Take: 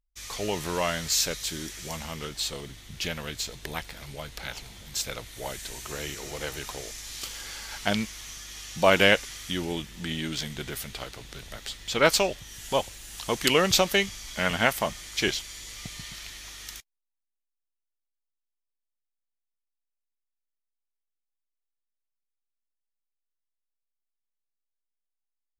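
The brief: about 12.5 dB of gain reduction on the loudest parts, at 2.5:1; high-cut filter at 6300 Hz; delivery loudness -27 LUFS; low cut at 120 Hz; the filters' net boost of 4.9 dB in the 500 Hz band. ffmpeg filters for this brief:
-af "highpass=120,lowpass=6.3k,equalizer=f=500:t=o:g=6,acompressor=threshold=-31dB:ratio=2.5,volume=8dB"

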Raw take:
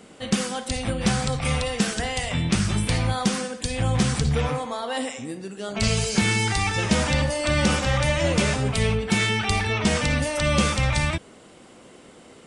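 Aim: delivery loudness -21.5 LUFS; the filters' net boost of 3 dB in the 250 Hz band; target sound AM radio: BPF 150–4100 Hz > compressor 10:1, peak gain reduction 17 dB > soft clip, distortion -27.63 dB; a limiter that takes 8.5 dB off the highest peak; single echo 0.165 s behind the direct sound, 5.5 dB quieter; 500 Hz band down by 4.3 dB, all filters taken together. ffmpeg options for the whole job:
-af "equalizer=f=250:t=o:g=6.5,equalizer=f=500:t=o:g=-6.5,alimiter=limit=-14dB:level=0:latency=1,highpass=150,lowpass=4.1k,aecho=1:1:165:0.531,acompressor=threshold=-36dB:ratio=10,asoftclip=threshold=-27dB,volume=18.5dB"

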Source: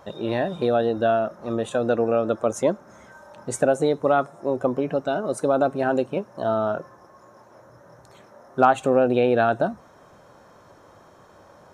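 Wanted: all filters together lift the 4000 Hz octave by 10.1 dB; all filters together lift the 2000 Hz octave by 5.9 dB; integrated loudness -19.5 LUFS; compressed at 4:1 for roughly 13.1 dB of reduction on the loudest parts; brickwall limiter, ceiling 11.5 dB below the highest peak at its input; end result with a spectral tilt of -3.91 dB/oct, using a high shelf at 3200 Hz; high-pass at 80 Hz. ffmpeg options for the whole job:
-af "highpass=80,equalizer=f=2k:t=o:g=5.5,highshelf=f=3.2k:g=8,equalizer=f=4k:t=o:g=5,acompressor=threshold=-25dB:ratio=4,volume=14.5dB,alimiter=limit=-8dB:level=0:latency=1"

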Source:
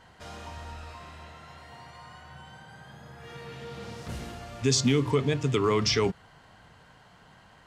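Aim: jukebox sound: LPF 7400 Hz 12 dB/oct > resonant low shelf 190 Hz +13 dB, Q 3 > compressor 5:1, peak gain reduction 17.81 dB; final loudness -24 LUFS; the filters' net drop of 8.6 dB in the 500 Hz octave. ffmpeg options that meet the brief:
-af "lowpass=7.4k,lowshelf=f=190:t=q:w=3:g=13,equalizer=f=500:t=o:g=-6.5,acompressor=threshold=-26dB:ratio=5,volume=7dB"

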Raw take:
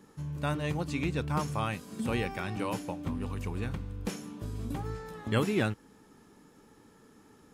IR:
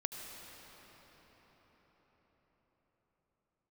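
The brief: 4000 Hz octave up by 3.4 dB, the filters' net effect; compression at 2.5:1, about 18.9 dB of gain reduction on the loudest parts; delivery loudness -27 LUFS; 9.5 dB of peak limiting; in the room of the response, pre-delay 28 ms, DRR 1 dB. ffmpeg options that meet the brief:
-filter_complex "[0:a]equalizer=f=4k:t=o:g=4.5,acompressor=threshold=-53dB:ratio=2.5,alimiter=level_in=17.5dB:limit=-24dB:level=0:latency=1,volume=-17.5dB,asplit=2[a][b];[1:a]atrim=start_sample=2205,adelay=28[c];[b][c]afir=irnorm=-1:irlink=0,volume=-2dB[d];[a][d]amix=inputs=2:normalize=0,volume=22dB"

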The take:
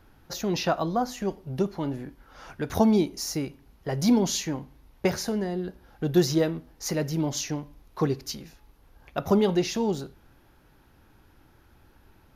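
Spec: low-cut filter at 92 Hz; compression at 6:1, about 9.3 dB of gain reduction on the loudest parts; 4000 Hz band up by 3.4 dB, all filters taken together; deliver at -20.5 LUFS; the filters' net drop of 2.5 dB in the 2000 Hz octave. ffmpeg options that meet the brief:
-af "highpass=92,equalizer=f=2k:t=o:g=-5,equalizer=f=4k:t=o:g=5.5,acompressor=threshold=-26dB:ratio=6,volume=11.5dB"

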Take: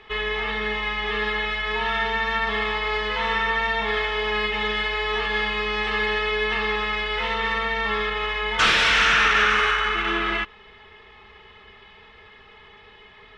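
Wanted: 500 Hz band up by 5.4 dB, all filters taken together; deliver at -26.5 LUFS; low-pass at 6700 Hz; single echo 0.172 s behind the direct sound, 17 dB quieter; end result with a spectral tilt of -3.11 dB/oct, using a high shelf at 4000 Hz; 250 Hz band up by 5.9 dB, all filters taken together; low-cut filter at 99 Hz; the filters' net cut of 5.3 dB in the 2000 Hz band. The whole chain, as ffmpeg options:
-af "highpass=99,lowpass=6.7k,equalizer=f=250:t=o:g=7,equalizer=f=500:t=o:g=4.5,equalizer=f=2k:t=o:g=-8,highshelf=f=4k:g=5,aecho=1:1:172:0.141,volume=-3.5dB"

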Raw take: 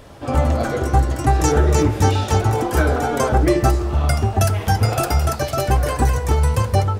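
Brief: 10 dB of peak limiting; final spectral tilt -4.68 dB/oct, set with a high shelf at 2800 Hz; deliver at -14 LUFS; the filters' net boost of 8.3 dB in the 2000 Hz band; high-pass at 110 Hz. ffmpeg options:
-af "highpass=110,equalizer=f=2k:t=o:g=8.5,highshelf=f=2.8k:g=7,volume=7.5dB,alimiter=limit=-4dB:level=0:latency=1"

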